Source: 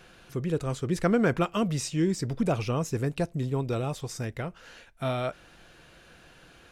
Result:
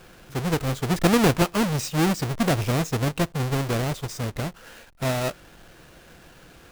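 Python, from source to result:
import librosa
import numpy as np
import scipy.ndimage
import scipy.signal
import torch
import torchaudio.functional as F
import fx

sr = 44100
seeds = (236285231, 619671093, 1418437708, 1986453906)

y = fx.halfwave_hold(x, sr)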